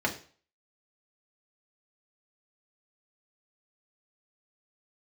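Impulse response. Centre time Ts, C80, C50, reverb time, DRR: 12 ms, 16.5 dB, 12.0 dB, 0.40 s, −1.0 dB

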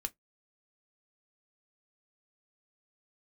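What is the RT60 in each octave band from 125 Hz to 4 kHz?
0.20, 0.15, 0.15, 0.10, 0.10, 0.10 seconds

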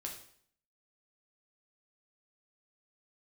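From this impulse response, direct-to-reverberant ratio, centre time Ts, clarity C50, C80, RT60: 0.0 dB, 24 ms, 7.0 dB, 10.5 dB, 0.60 s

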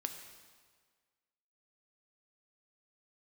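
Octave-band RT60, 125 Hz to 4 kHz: 1.5, 1.5, 1.6, 1.6, 1.5, 1.4 seconds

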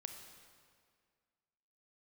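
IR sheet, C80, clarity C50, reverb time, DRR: 7.0 dB, 6.0 dB, 2.0 s, 5.0 dB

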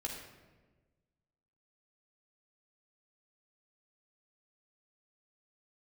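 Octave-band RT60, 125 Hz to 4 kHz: 1.8, 1.6, 1.5, 1.1, 1.1, 0.80 seconds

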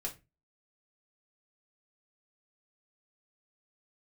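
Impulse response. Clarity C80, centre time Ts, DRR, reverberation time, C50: 22.0 dB, 12 ms, −1.5 dB, 0.25 s, 14.5 dB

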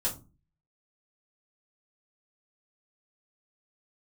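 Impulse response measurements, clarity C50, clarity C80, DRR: 12.5 dB, 18.5 dB, −6.0 dB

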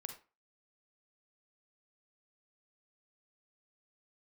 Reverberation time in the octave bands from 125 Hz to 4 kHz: 0.30, 0.30, 0.30, 0.35, 0.30, 0.25 seconds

